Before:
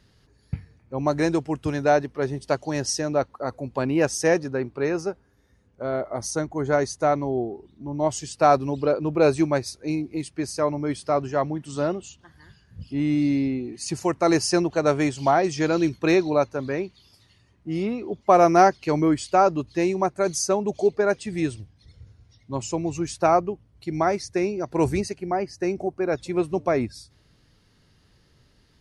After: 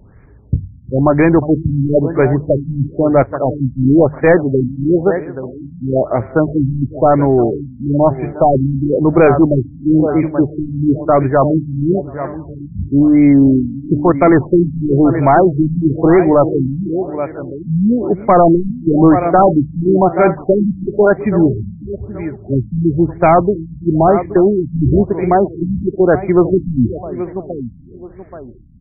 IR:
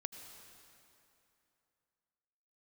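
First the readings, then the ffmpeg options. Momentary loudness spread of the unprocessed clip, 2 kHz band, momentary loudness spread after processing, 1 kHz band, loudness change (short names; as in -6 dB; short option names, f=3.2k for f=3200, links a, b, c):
11 LU, +5.5 dB, 12 LU, +7.5 dB, +10.5 dB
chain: -filter_complex "[0:a]lowshelf=f=150:g=5.5,asplit=2[a][b];[b]adelay=357,lowpass=f=1.6k:p=1,volume=-19.5dB,asplit=2[c][d];[d]adelay=357,lowpass=f=1.6k:p=1,volume=0.39,asplit=2[e][f];[f]adelay=357,lowpass=f=1.6k:p=1,volume=0.39[g];[c][e][g]amix=inputs=3:normalize=0[h];[a][h]amix=inputs=2:normalize=0,aexciter=amount=15.9:drive=4:freq=7.8k,asoftclip=type=hard:threshold=-5dB,asplit=2[i][j];[j]aecho=0:1:827|1654|2481:0.2|0.0559|0.0156[k];[i][k]amix=inputs=2:normalize=0,apsyclip=17.5dB,bandreject=f=50:t=h:w=6,bandreject=f=100:t=h:w=6,bandreject=f=150:t=h:w=6,afftfilt=real='re*lt(b*sr/1024,260*pow(2500/260,0.5+0.5*sin(2*PI*1*pts/sr)))':imag='im*lt(b*sr/1024,260*pow(2500/260,0.5+0.5*sin(2*PI*1*pts/sr)))':win_size=1024:overlap=0.75,volume=-3.5dB"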